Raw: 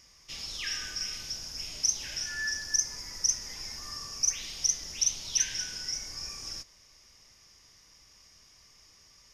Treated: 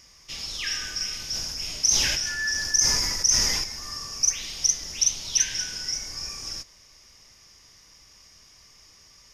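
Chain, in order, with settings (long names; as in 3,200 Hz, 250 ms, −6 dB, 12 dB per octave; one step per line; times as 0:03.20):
0:01.18–0:03.64: level that may fall only so fast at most 27 dB per second
level +5 dB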